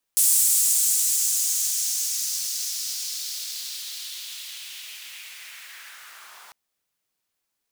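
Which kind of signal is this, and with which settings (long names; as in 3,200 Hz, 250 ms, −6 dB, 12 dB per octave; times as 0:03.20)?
filter sweep on noise pink, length 6.35 s highpass, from 8,400 Hz, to 930 Hz, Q 2.1, linear, gain ramp −32 dB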